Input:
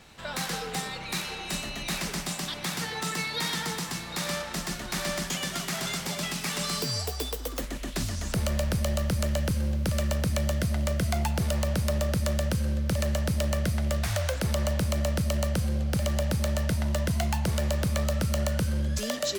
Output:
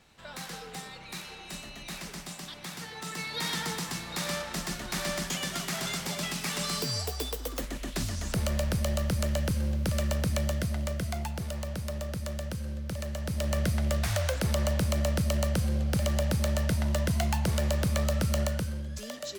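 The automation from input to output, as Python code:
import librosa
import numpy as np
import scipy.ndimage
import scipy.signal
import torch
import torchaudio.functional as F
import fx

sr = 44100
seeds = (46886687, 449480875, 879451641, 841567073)

y = fx.gain(x, sr, db=fx.line((2.95, -8.5), (3.51, -1.5), (10.37, -1.5), (11.46, -8.0), (13.14, -8.0), (13.59, -0.5), (18.41, -0.5), (18.85, -9.0)))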